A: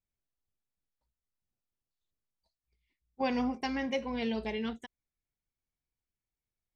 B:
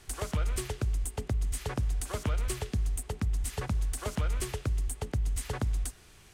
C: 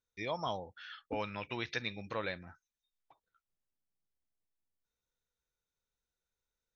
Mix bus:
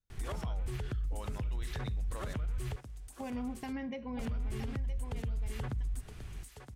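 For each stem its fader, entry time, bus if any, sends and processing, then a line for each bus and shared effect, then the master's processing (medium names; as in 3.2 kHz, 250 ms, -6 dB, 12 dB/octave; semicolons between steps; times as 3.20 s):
-4.5 dB, 0.00 s, bus A, no send, echo send -6.5 dB, compression, threshold -34 dBFS, peak gain reduction 8.5 dB
+2.0 dB, 0.10 s, muted 2.76–4.19 s, bus A, no send, echo send -17 dB, treble shelf 7 kHz +5.5 dB; peak limiter -25.5 dBFS, peak gain reduction 7 dB
-7.5 dB, 0.00 s, no bus, no send, no echo send, band-stop 2.4 kHz, Q 5.1; decay stretcher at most 79 dB/s
bus A: 0.0 dB, tone controls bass +10 dB, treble -10 dB; compression 6:1, threshold -27 dBFS, peak gain reduction 10.5 dB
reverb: none
echo: delay 968 ms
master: peak limiter -29.5 dBFS, peak gain reduction 9.5 dB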